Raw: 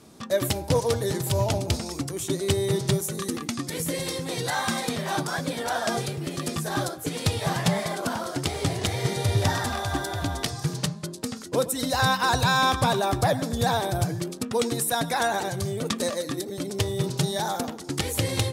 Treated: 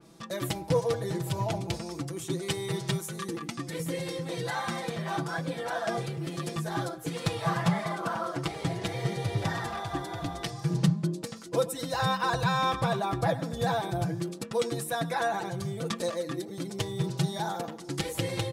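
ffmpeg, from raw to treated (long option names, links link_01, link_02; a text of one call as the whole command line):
ffmpeg -i in.wav -filter_complex "[0:a]asettb=1/sr,asplit=3[link_01][link_02][link_03];[link_01]atrim=end=2.424[link_04];[link_02]atrim=start=2.42:end=3.24,asetpts=PTS-STARTPTS,afade=type=in:duration=0.004:curve=qsin,afade=type=out:start_time=0.816:duration=0.004:curve=qsin,tiltshelf=frequency=710:gain=-4[link_05];[link_03]atrim=start=3.236[link_06];[link_04][link_05]acrossfade=duration=0.004:curve1=hsin:curve2=qsin[link_07];[link_07][link_06]acrossfade=duration=0.004:curve1=qsin:curve2=hsin,asettb=1/sr,asplit=3[link_08][link_09][link_10];[link_08]atrim=end=7.164[link_11];[link_09]atrim=start=7.16:end=8.48,asetpts=PTS-STARTPTS,afade=type=in:duration=0.004:curve=qsin,afade=type=out:start_time=1.316:duration=0.004:curve=qsin,equalizer=frequency=1200:width_type=o:width=0.62:gain=7[link_12];[link_10]atrim=start=8.476[link_13];[link_11][link_12]acrossfade=duration=0.004:curve1=hsin:curve2=qsin[link_14];[link_14][link_13]acrossfade=duration=0.004:curve1=qsin:curve2=hsin,asettb=1/sr,asplit=3[link_15][link_16][link_17];[link_15]atrim=end=10.704[link_18];[link_16]atrim=start=10.7:end=11.23,asetpts=PTS-STARTPTS,afade=type=in:duration=0.004:curve=qsin,afade=type=out:start_time=0.526:duration=0.004:curve=qsin,equalizer=frequency=210:width=0.62:gain=9.5[link_19];[link_17]atrim=start=11.226[link_20];[link_18][link_19]acrossfade=duration=0.004:curve1=hsin:curve2=qsin[link_21];[link_21][link_20]acrossfade=duration=0.004:curve1=qsin:curve2=hsin,highshelf=frequency=10000:gain=-4.5,aecho=1:1:6:0.76,adynamicequalizer=threshold=0.00794:dfrequency=3300:dqfactor=0.7:tfrequency=3300:tqfactor=0.7:attack=5:release=100:ratio=0.375:range=4:mode=cutabove:tftype=highshelf,volume=-6dB" out.wav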